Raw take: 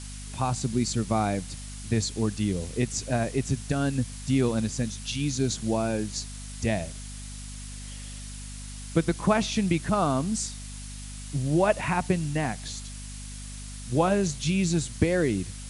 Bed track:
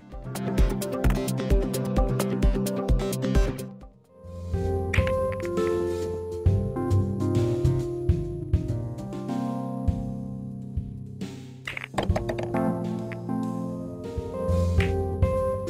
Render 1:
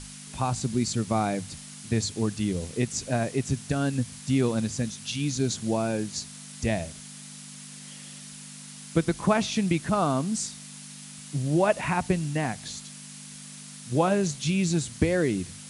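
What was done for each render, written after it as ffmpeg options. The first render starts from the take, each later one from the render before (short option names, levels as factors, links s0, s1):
-af "bandreject=f=50:t=h:w=6,bandreject=f=100:t=h:w=6"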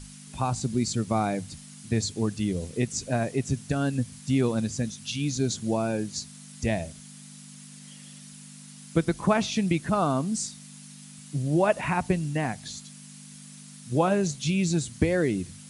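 -af "afftdn=nr=6:nf=-44"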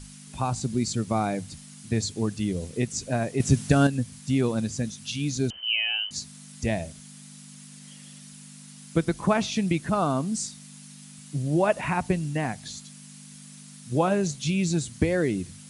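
-filter_complex "[0:a]asettb=1/sr,asplit=3[s0][s1][s2];[s0]atrim=end=5.504[s3];[s1]atrim=start=5.5:end=6.11,asetpts=PTS-STARTPTS,afade=t=in:d=0.004:c=qsin,afade=t=out:st=0.606:d=0.004:c=qsin,lowpass=f=2700:t=q:w=0.5098,lowpass=f=2700:t=q:w=0.6013,lowpass=f=2700:t=q:w=0.9,lowpass=f=2700:t=q:w=2.563,afreqshift=-3200[s4];[s2]atrim=start=6.106[s5];[s3][s4]acrossfade=d=0.004:c1=hsin:c2=qsin[s6];[s6][s5]acrossfade=d=0.004:c1=qsin:c2=hsin,asplit=3[s7][s8][s9];[s7]atrim=end=3.402[s10];[s8]atrim=start=3.398:end=3.872,asetpts=PTS-STARTPTS,volume=2.37[s11];[s9]atrim=start=3.868[s12];[s10][s11]acrossfade=d=0.004:c1=hsin:c2=hsin[s13];[s13][s12]acrossfade=d=0.004:c1=hsin:c2=hsin"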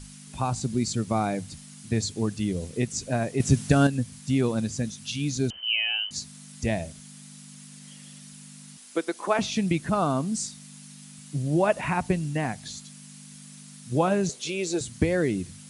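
-filter_complex "[0:a]asettb=1/sr,asplit=3[s0][s1][s2];[s0]atrim=end=8.774[s3];[s1]atrim=start=8.77:end=9.39,asetpts=PTS-STARTPTS,afade=t=in:d=0.004:c=qsin,afade=t=out:st=0.616:d=0.004:c=qsin,highpass=f=320:w=0.5412,highpass=f=320:w=1.3066[s4];[s2]atrim=start=9.386[s5];[s3][s4]acrossfade=d=0.004:c1=hsin:c2=qsin[s6];[s6][s5]acrossfade=d=0.004:c1=qsin:c2=hsin,asettb=1/sr,asplit=3[s7][s8][s9];[s7]atrim=end=14.294[s10];[s8]atrim=start=14.29:end=14.81,asetpts=PTS-STARTPTS,afade=t=in:d=0.004:c=qsin,afade=t=out:st=0.516:d=0.004:c=qsin,highpass=f=440:t=q:w=3.5[s11];[s9]atrim=start=14.806[s12];[s10][s11]acrossfade=d=0.004:c1=hsin:c2=qsin[s13];[s13][s12]acrossfade=d=0.004:c1=qsin:c2=hsin"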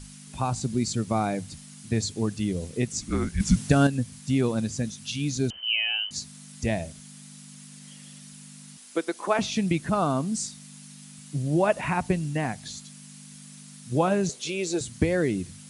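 -filter_complex "[0:a]asettb=1/sr,asplit=3[s0][s1][s2];[s0]atrim=end=3.014[s3];[s1]atrim=start=3.01:end=3.56,asetpts=PTS-STARTPTS,afade=t=in:d=0.004:c=qsin,afade=t=out:st=0.546:d=0.004:c=qsin,afreqshift=-320[s4];[s2]atrim=start=3.556[s5];[s3][s4]acrossfade=d=0.004:c1=hsin:c2=qsin[s6];[s6][s5]acrossfade=d=0.004:c1=qsin:c2=hsin"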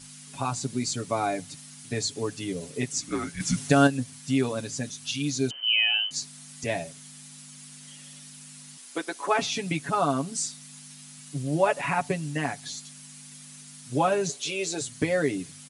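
-af "highpass=f=340:p=1,aecho=1:1:7.1:0.77"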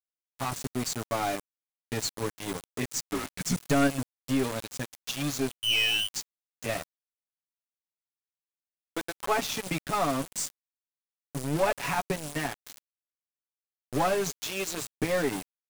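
-af "aeval=exprs='val(0)*gte(abs(val(0)),0.0355)':c=same,aeval=exprs='(tanh(7.08*val(0)+0.35)-tanh(0.35))/7.08':c=same"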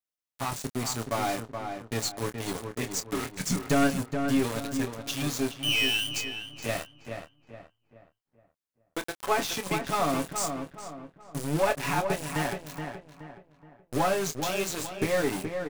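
-filter_complex "[0:a]asplit=2[s0][s1];[s1]adelay=26,volume=0.316[s2];[s0][s2]amix=inputs=2:normalize=0,asplit=2[s3][s4];[s4]adelay=423,lowpass=f=2100:p=1,volume=0.501,asplit=2[s5][s6];[s6]adelay=423,lowpass=f=2100:p=1,volume=0.4,asplit=2[s7][s8];[s8]adelay=423,lowpass=f=2100:p=1,volume=0.4,asplit=2[s9][s10];[s10]adelay=423,lowpass=f=2100:p=1,volume=0.4,asplit=2[s11][s12];[s12]adelay=423,lowpass=f=2100:p=1,volume=0.4[s13];[s3][s5][s7][s9][s11][s13]amix=inputs=6:normalize=0"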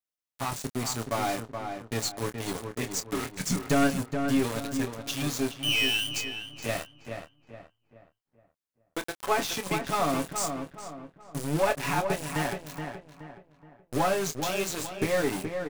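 -af anull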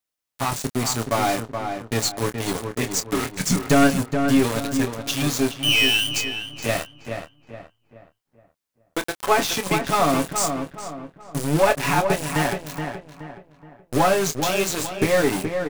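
-af "volume=2.37"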